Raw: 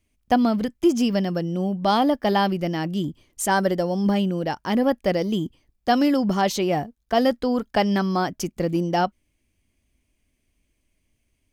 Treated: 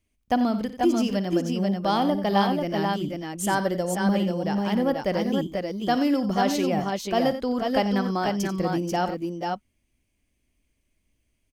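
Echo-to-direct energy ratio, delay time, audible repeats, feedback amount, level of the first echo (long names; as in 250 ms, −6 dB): −2.5 dB, 56 ms, 3, repeats not evenly spaced, −15.0 dB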